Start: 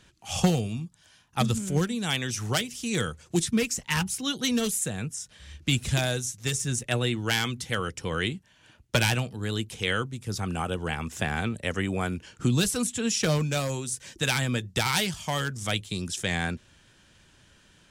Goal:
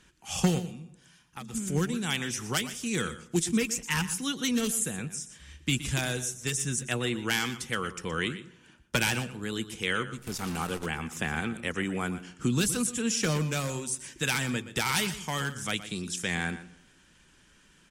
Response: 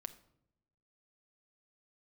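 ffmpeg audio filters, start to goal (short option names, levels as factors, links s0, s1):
-filter_complex "[0:a]equalizer=f=100:t=o:w=0.67:g=-11,equalizer=f=630:t=o:w=0.67:g=-7,equalizer=f=4000:t=o:w=0.67:g=-5,asplit=3[s0][s1][s2];[s0]afade=t=out:st=0.58:d=0.02[s3];[s1]acompressor=threshold=0.01:ratio=6,afade=t=in:st=0.58:d=0.02,afade=t=out:st=1.53:d=0.02[s4];[s2]afade=t=in:st=1.53:d=0.02[s5];[s3][s4][s5]amix=inputs=3:normalize=0,asplit=2[s6][s7];[s7]adelay=149,lowpass=f=2300:p=1,volume=0.0708,asplit=2[s8][s9];[s9]adelay=149,lowpass=f=2300:p=1,volume=0.42,asplit=2[s10][s11];[s11]adelay=149,lowpass=f=2300:p=1,volume=0.42[s12];[s6][s8][s10][s12]amix=inputs=4:normalize=0,asettb=1/sr,asplit=3[s13][s14][s15];[s13]atrim=end=10.184[s16];[s14]atrim=start=10.18:end=10.86,asetpts=PTS-STARTPTS,afade=t=in:d=0.004:c=qsin,afade=t=out:st=0.676:d=0.004:c=qsin,acrusher=bits=7:dc=4:mix=0:aa=0.000001[s17];[s15]atrim=start=10.856[s18];[s16][s17]acrossfade=d=0.004:c1=hsin:c2=qsin[s19];[s19][s18]acrossfade=d=0.004:c1=qsin:c2=hsin,asplit=2[s20][s21];[1:a]atrim=start_sample=2205,adelay=120[s22];[s21][s22]afir=irnorm=-1:irlink=0,volume=0.335[s23];[s20][s23]amix=inputs=2:normalize=0" -ar 48000 -c:a libmp3lame -b:a 64k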